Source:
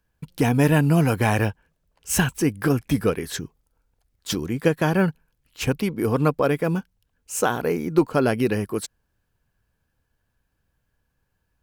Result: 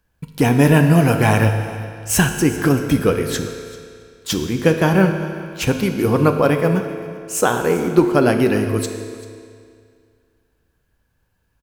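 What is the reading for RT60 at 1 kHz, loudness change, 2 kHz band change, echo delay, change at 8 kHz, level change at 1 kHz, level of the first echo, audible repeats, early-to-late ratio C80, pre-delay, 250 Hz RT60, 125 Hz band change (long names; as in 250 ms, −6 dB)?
2.1 s, +5.5 dB, +5.5 dB, 389 ms, +5.5 dB, +5.5 dB, −20.0 dB, 1, 8.0 dB, 9 ms, 2.1 s, +5.5 dB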